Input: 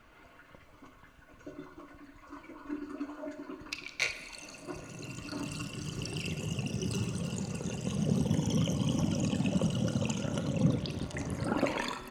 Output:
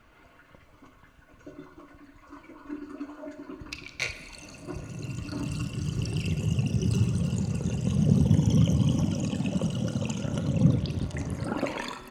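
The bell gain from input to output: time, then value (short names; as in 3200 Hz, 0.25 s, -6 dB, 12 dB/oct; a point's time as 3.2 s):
bell 76 Hz 2.8 oct
3.3 s +3 dB
3.7 s +13 dB
8.79 s +13 dB
9.22 s +3 dB
10.03 s +3 dB
10.54 s +10 dB
11.09 s +10 dB
11.58 s +0.5 dB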